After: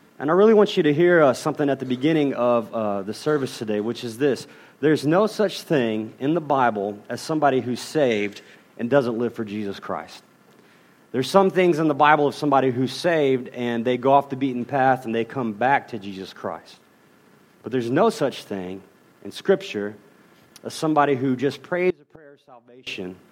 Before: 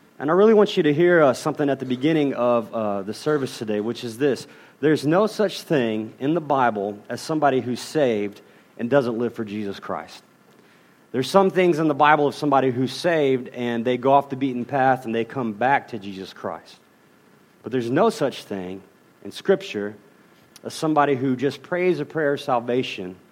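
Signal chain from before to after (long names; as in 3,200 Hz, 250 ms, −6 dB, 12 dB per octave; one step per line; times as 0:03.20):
0:08.11–0:08.55: gain on a spectral selection 1,500–8,500 Hz +9 dB
0:21.90–0:22.87: gate with flip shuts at −23 dBFS, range −26 dB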